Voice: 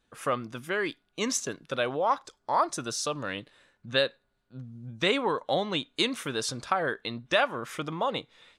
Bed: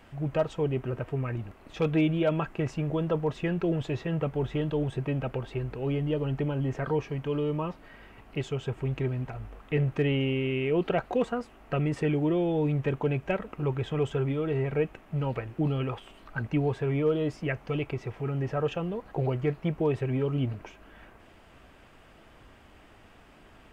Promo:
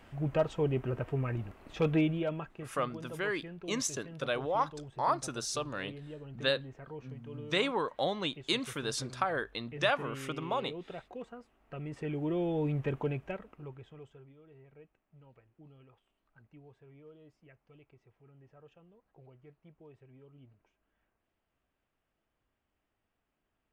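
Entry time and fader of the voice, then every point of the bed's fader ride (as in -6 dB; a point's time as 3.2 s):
2.50 s, -4.5 dB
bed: 1.94 s -2 dB
2.75 s -17 dB
11.58 s -17 dB
12.42 s -5 dB
13.03 s -5 dB
14.33 s -29 dB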